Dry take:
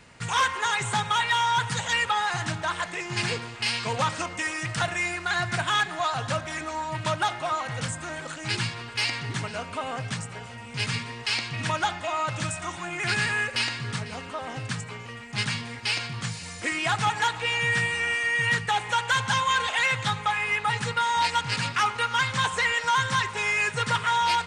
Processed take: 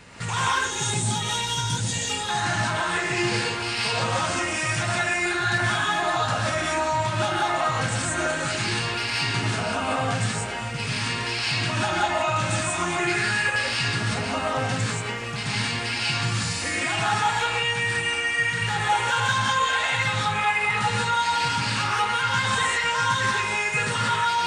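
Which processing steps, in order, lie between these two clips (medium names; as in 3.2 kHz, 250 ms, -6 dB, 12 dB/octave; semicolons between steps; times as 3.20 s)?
0.51–2.29 s: FFT filter 300 Hz 0 dB, 1.3 kHz -20 dB, 6.1 kHz -1 dB; peak limiter -26 dBFS, peak gain reduction 11 dB; gated-style reverb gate 210 ms rising, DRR -5.5 dB; trim +4 dB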